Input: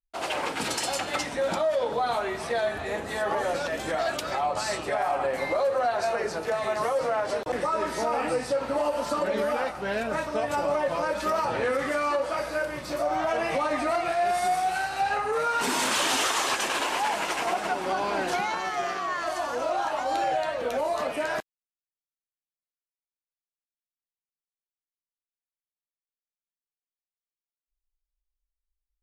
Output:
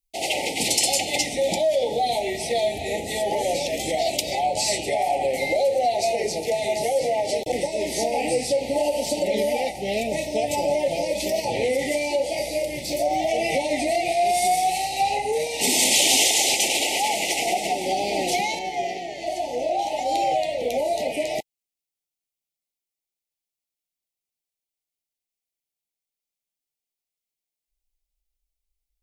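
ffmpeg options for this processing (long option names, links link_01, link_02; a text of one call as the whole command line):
ffmpeg -i in.wav -af "asetnsamples=nb_out_samples=441:pad=0,asendcmd='18.59 highshelf g -3.5;19.79 highshelf g 4',highshelf=frequency=3700:gain=9,asuperstop=centerf=1300:order=20:qfactor=1.2,volume=4dB" out.wav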